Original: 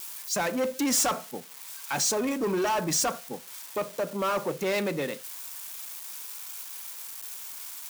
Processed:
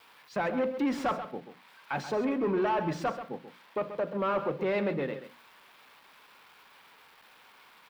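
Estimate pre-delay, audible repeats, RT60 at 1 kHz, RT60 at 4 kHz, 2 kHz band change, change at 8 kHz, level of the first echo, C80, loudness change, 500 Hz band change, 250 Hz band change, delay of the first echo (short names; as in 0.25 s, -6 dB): none, 1, none, none, -3.5 dB, under -25 dB, -11.0 dB, none, -2.0 dB, -1.0 dB, -0.5 dB, 0.133 s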